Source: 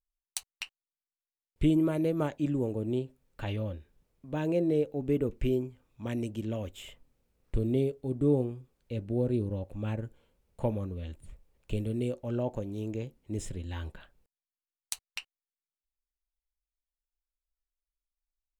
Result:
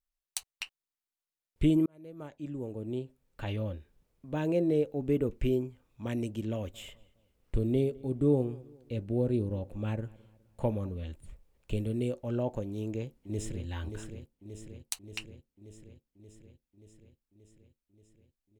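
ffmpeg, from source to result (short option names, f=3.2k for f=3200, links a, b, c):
-filter_complex "[0:a]asettb=1/sr,asplit=3[a][b][c];[a]atrim=end=6.534[d];[b]atrim=start=6.53:end=11.04,asetpts=PTS-STARTPTS,afade=t=in:d=0.004:c=qsin,afade=t=out:st=4.506:d=0.004:c=qsin,asplit=2[e][f];[f]adelay=208,lowpass=f=3.1k:p=1,volume=-23dB,asplit=2[g][h];[h]adelay=208,lowpass=f=3.1k:p=1,volume=0.44,asplit=2[i][j];[j]adelay=208,lowpass=f=3.1k:p=1,volume=0.44[k];[e][g][i][k]amix=inputs=4:normalize=0,atrim=end_sample=198891[l];[c]atrim=start=11.036[m];[d][l]acrossfade=d=0.004:c1=hsin:c2=qsin[n];[n][m]acrossfade=d=0.004:c1=qsin:c2=hsin,asplit=2[o][p];[p]afade=t=in:st=12.67:d=0.01,afade=t=out:st=13.66:d=0.01,aecho=0:1:580|1160|1740|2320|2900|3480|4060|4640|5220|5800|6380:0.398107|0.278675|0.195073|0.136551|0.0955855|0.0669099|0.0468369|0.0327858|0.0229501|0.0160651|0.0112455[q];[o][q]amix=inputs=2:normalize=0,asplit=2[r][s];[r]atrim=end=1.86,asetpts=PTS-STARTPTS,afade=t=out:st=1.856:d=0.004:c=hsin[t];[s]atrim=start=1.86,asetpts=PTS-STARTPTS,afade=t=in:d=1.8[u];[t][u]concat=n=2:v=0:a=1"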